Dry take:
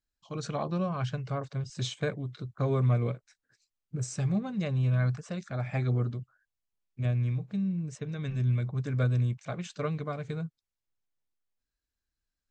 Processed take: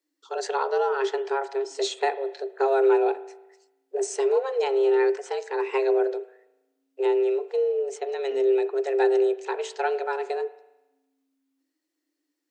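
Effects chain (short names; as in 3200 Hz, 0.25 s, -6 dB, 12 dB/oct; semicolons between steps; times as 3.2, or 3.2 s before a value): frequency shift +270 Hz; spring tank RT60 1 s, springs 36 ms, chirp 75 ms, DRR 14.5 dB; gain +6 dB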